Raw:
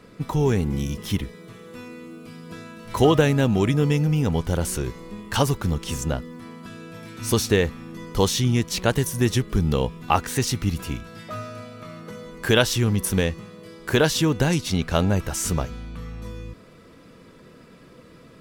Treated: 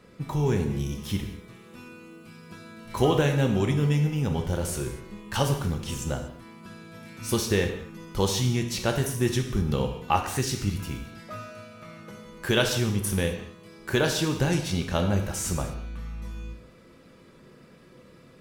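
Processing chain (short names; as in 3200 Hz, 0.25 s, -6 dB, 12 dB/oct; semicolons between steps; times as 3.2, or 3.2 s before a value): non-linear reverb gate 0.27 s falling, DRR 3.5 dB; gain -5.5 dB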